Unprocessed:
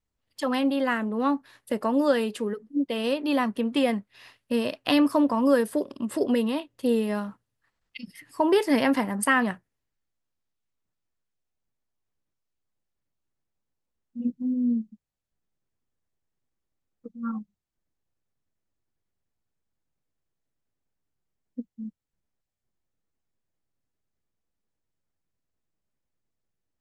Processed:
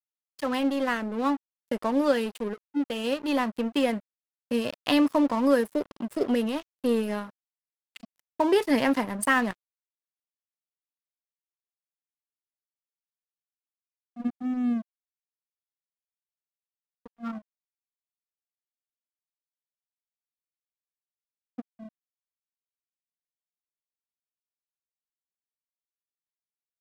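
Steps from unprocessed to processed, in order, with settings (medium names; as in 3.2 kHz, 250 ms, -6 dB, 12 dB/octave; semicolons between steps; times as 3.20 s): crossover distortion -37 dBFS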